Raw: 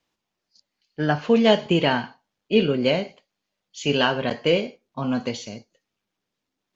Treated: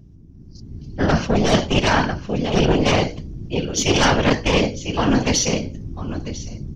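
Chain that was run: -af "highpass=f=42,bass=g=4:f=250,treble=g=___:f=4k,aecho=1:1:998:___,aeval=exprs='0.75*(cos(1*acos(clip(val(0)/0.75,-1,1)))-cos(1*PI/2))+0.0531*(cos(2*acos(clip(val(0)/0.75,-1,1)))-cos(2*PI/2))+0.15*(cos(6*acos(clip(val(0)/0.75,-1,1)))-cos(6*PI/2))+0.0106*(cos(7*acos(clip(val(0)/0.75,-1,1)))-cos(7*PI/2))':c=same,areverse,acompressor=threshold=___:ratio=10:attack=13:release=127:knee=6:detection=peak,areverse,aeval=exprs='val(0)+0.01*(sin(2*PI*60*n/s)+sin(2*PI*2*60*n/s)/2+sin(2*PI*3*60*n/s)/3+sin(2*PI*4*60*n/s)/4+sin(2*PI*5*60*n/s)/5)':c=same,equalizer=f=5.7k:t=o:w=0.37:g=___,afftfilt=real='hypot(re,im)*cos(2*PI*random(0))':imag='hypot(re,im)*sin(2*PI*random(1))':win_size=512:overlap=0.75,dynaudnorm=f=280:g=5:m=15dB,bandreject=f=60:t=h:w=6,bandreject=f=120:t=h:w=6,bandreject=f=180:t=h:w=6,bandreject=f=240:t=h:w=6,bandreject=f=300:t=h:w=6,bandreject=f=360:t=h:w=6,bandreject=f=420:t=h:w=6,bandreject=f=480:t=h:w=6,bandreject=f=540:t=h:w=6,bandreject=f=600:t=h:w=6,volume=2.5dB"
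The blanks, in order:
0, 0.158, -24dB, 12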